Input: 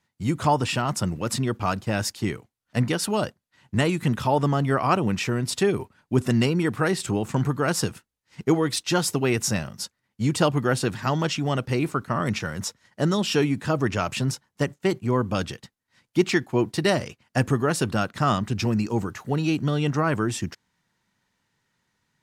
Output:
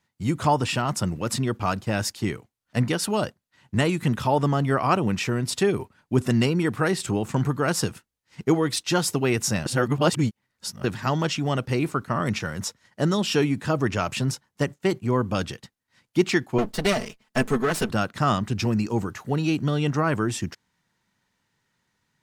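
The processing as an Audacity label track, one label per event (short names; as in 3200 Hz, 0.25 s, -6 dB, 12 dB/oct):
9.660000	10.840000	reverse
16.580000	17.900000	minimum comb delay 4.6 ms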